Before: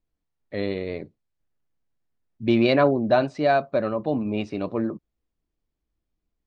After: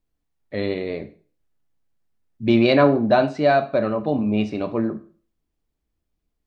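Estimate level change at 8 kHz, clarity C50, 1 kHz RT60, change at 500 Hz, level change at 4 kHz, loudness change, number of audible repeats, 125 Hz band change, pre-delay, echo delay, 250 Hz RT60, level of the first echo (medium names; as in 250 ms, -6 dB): no reading, 15.0 dB, 0.40 s, +3.0 dB, +3.0 dB, +3.0 dB, no echo, +3.5 dB, 7 ms, no echo, 0.40 s, no echo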